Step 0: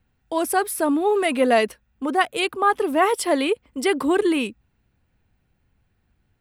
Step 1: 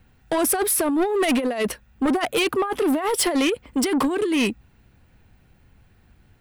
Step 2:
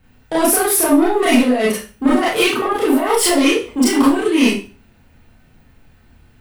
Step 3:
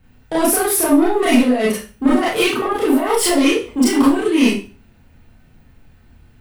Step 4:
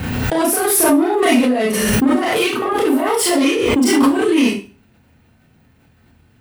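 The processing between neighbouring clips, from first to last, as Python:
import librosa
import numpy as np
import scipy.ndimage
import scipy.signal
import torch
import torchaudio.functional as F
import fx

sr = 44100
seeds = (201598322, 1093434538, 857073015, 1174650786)

y1 = fx.over_compress(x, sr, threshold_db=-23.0, ratio=-0.5)
y1 = 10.0 ** (-24.0 / 20.0) * np.tanh(y1 / 10.0 ** (-24.0 / 20.0))
y1 = F.gain(torch.from_numpy(y1), 7.5).numpy()
y2 = fx.rev_schroeder(y1, sr, rt60_s=0.35, comb_ms=25, drr_db=-7.0)
y2 = F.gain(torch.from_numpy(y2), -1.0).numpy()
y3 = fx.low_shelf(y2, sr, hz=280.0, db=4.0)
y3 = F.gain(torch.from_numpy(y3), -2.0).numpy()
y4 = scipy.signal.sosfilt(scipy.signal.butter(2, 85.0, 'highpass', fs=sr, output='sos'), y3)
y4 = fx.pre_swell(y4, sr, db_per_s=21.0)
y4 = F.gain(torch.from_numpy(y4), -1.5).numpy()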